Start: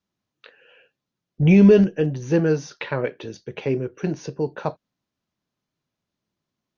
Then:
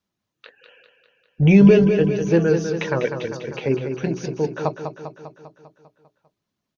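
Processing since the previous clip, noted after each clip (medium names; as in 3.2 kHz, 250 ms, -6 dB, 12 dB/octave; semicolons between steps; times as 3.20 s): reverb removal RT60 0.57 s; hum notches 60/120/180/240/300/360/420 Hz; on a send: feedback delay 199 ms, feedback 60%, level -7.5 dB; on the sum: trim +2.5 dB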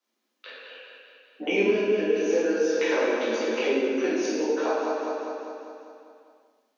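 steep high-pass 220 Hz 96 dB/octave; compression 4:1, threshold -27 dBFS, peak gain reduction 14.5 dB; reverberation RT60 1.3 s, pre-delay 3 ms, DRR -8.5 dB; trim -3 dB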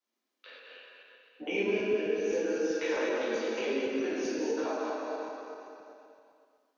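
backward echo that repeats 129 ms, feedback 49%, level -4 dB; trim -8 dB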